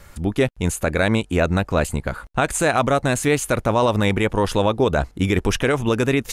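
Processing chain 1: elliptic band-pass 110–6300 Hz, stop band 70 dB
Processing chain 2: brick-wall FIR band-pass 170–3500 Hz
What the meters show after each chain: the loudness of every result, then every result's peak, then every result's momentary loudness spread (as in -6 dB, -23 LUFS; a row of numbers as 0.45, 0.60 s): -21.0, -21.5 LUFS; -3.5, -5.5 dBFS; 4, 5 LU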